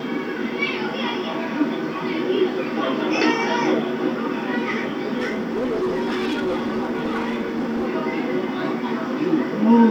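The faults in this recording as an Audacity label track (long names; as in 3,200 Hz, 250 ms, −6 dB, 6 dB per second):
5.170000	7.880000	clipping −19.5 dBFS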